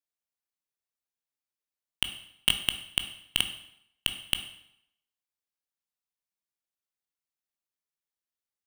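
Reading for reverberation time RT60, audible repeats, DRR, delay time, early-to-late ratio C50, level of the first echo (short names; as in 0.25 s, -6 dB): 0.75 s, none, 7.5 dB, none, 10.5 dB, none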